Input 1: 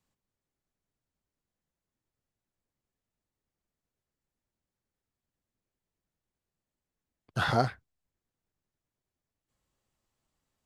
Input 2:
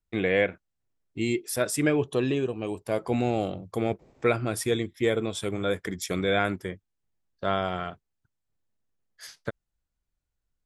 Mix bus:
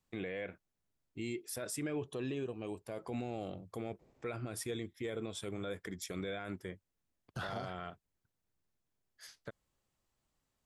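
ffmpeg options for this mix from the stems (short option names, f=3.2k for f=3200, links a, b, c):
-filter_complex "[0:a]acompressor=threshold=-31dB:ratio=6,volume=-1.5dB[a];[1:a]volume=-9.5dB[b];[a][b]amix=inputs=2:normalize=0,alimiter=level_in=6dB:limit=-24dB:level=0:latency=1:release=40,volume=-6dB"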